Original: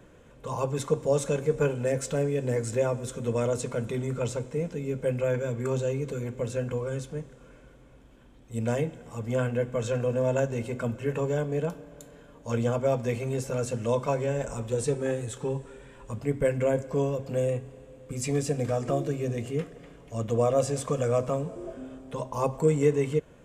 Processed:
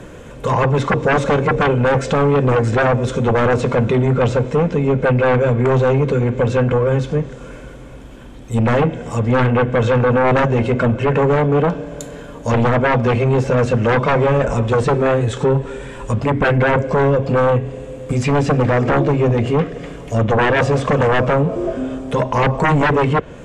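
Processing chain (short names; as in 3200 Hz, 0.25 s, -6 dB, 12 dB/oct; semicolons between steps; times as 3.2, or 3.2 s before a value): sine folder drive 14 dB, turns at -10.5 dBFS; treble ducked by the level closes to 2800 Hz, closed at -12.5 dBFS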